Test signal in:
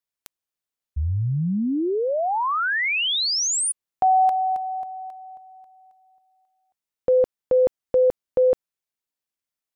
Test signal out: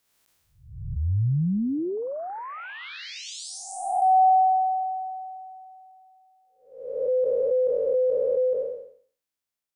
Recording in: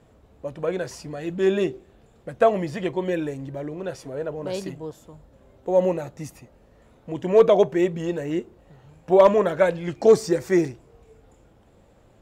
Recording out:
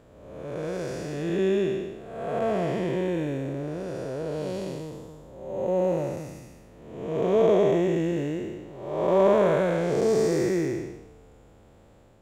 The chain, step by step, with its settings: time blur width 0.421 s; gain +3 dB

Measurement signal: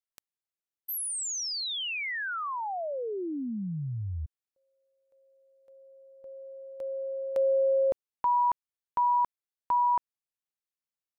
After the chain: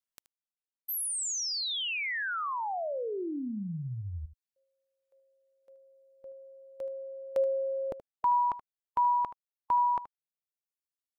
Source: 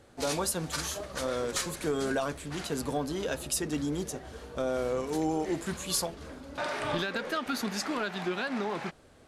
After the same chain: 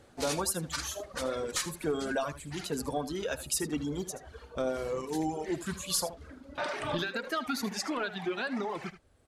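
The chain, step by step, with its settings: reverb removal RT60 1.8 s; echo 77 ms -14 dB

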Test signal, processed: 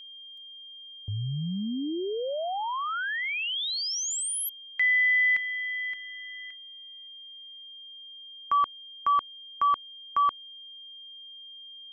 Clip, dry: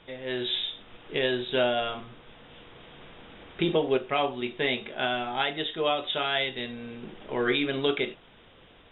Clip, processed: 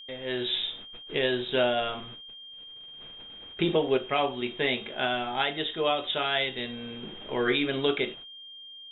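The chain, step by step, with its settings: gate -46 dBFS, range -24 dB; whine 3200 Hz -43 dBFS

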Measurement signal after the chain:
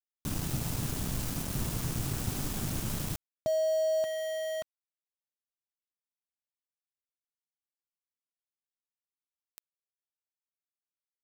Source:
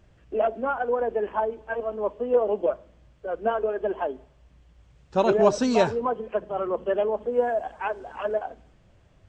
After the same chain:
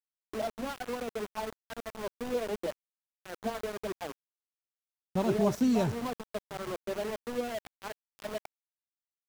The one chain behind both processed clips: graphic EQ 125/250/500/1000/2000/4000 Hz +9/+3/-7/-4/-9/-5 dB; sample gate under -31 dBFS; gain -4.5 dB

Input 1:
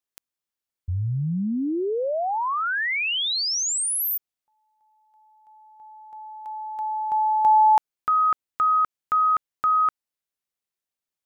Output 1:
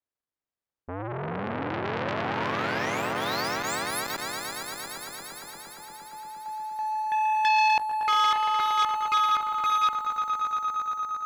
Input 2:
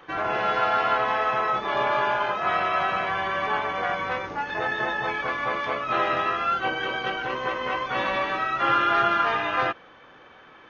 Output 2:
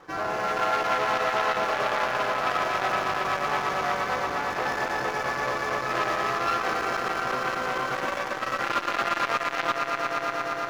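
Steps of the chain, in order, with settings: median filter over 15 samples; on a send: swelling echo 0.116 s, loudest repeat 5, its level -9 dB; on the sum: core saturation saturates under 2100 Hz

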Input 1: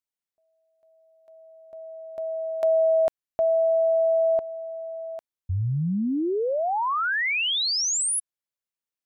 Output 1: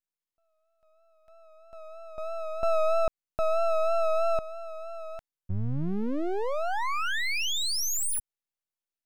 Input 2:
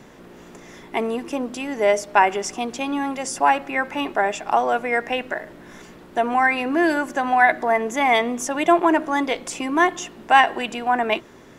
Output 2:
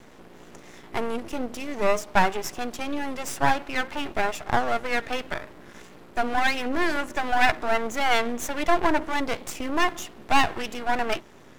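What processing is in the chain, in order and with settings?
vibrato 3.1 Hz 45 cents; half-wave rectifier

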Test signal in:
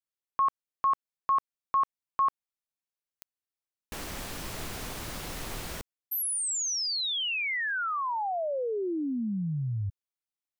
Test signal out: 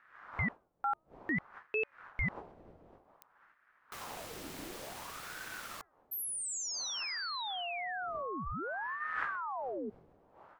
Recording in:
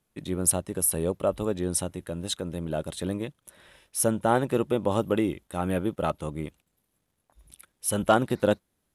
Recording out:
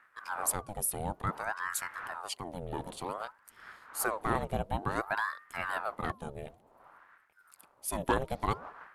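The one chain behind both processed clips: wind noise 360 Hz -45 dBFS; de-hum 317.2 Hz, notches 3; ring modulator with a swept carrier 900 Hz, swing 70%, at 0.55 Hz; gain -5 dB

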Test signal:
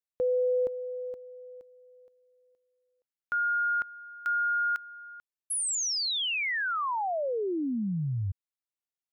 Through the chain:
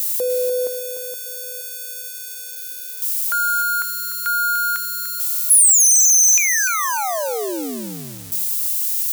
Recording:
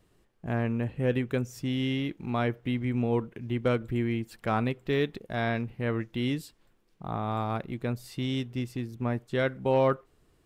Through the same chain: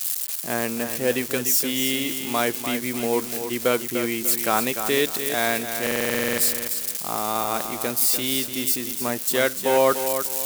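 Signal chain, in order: switching spikes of -31 dBFS; HPF 300 Hz 12 dB/oct; high shelf 3800 Hz +11.5 dB; stuck buffer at 5.82, samples 2048, times 11; lo-fi delay 0.296 s, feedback 35%, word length 8-bit, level -8 dB; gain +6 dB

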